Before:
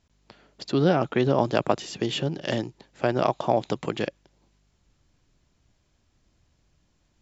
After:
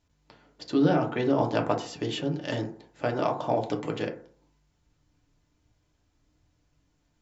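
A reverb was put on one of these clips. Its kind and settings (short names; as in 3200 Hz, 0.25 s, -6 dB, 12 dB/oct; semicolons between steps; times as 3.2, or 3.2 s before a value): FDN reverb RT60 0.5 s, low-frequency decay 0.95×, high-frequency decay 0.35×, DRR 1.5 dB; gain -5.5 dB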